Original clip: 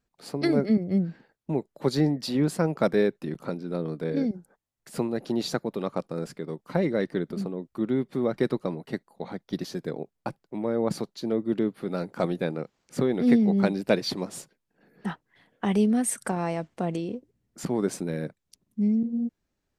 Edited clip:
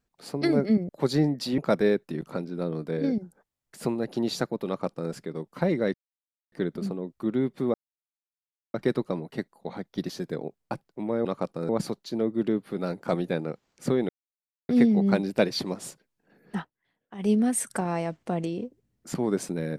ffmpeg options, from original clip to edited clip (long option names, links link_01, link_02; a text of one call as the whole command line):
ffmpeg -i in.wav -filter_complex "[0:a]asplit=10[link_01][link_02][link_03][link_04][link_05][link_06][link_07][link_08][link_09][link_10];[link_01]atrim=end=0.892[link_11];[link_02]atrim=start=1.708:end=2.402[link_12];[link_03]atrim=start=2.708:end=7.07,asetpts=PTS-STARTPTS,afade=type=out:start_time=4.358:duration=0.004:curve=hsin,apad=pad_dur=0.58[link_13];[link_04]atrim=start=7.07:end=8.29,asetpts=PTS-STARTPTS,afade=type=in:duration=0.004:curve=hsin,afade=type=out:start_time=1.216:duration=0.004:curve=hsin,apad=pad_dur=1[link_14];[link_05]atrim=start=8.29:end=10.802,asetpts=PTS-STARTPTS,afade=type=in:duration=0.004:curve=hsin[link_15];[link_06]atrim=start=5.798:end=6.242[link_16];[link_07]atrim=start=10.798:end=13.2,asetpts=PTS-STARTPTS,afade=type=out:start_time=2.398:duration=0.004:curve=hsin,apad=pad_dur=0.6[link_17];[link_08]atrim=start=13.2:end=15.22,asetpts=PTS-STARTPTS,afade=type=in:duration=0.004:curve=hsin,afade=type=out:start_time=1.89:duration=0.13:silence=0.16788[link_18];[link_09]atrim=start=15.22:end=15.69,asetpts=PTS-STARTPTS,volume=-15.5dB[link_19];[link_10]atrim=start=15.69,asetpts=PTS-STARTPTS,afade=type=in:duration=0.13:silence=0.16788[link_20];[link_11][link_12]acrossfade=duration=0.004:curve1=hsin:curve2=hsin[link_21];[link_13][link_14][link_15]concat=n=3:v=0:a=1[link_22];[link_21][link_22]acrossfade=duration=0.004:curve1=hsin:curve2=hsin[link_23];[link_23][link_16]acrossfade=duration=0.004:curve1=hsin:curve2=hsin[link_24];[link_17][link_18][link_19][link_20]concat=n=4:v=0:a=1[link_25];[link_24][link_25]acrossfade=duration=0.004:curve1=hsin:curve2=hsin" out.wav